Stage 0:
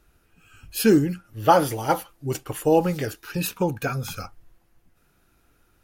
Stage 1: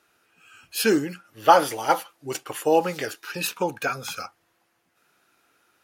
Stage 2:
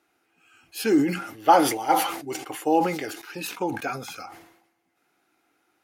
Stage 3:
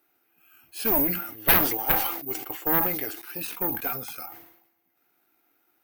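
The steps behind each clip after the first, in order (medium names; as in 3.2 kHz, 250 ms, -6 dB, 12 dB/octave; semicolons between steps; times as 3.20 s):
frequency weighting A; trim +2.5 dB
small resonant body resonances 310/760/2100 Hz, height 10 dB, ringing for 25 ms; decay stretcher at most 71 dB/s; trim -7 dB
Chebyshev shaper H 3 -7 dB, 4 -7 dB, 7 -14 dB, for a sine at -5 dBFS; careless resampling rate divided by 3×, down filtered, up zero stuff; trim -8.5 dB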